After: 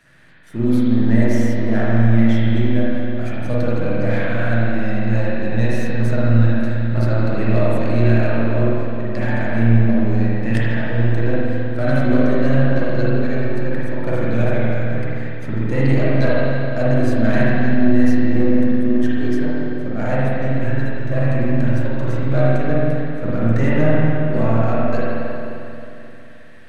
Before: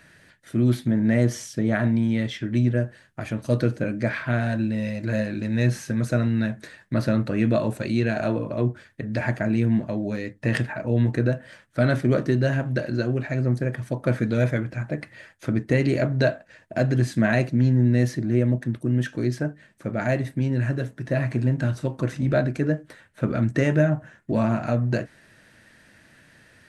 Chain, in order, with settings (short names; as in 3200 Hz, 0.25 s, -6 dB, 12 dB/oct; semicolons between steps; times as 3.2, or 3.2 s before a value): half-wave gain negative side -7 dB; spring tank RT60 3 s, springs 44/52 ms, chirp 35 ms, DRR -8 dB; gain -1 dB